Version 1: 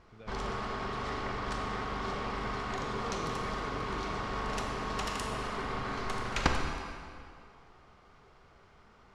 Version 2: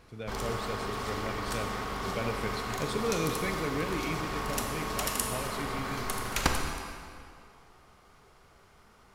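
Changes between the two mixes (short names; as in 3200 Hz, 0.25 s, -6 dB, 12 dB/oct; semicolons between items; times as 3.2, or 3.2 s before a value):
speech +11.5 dB; master: remove air absorption 110 m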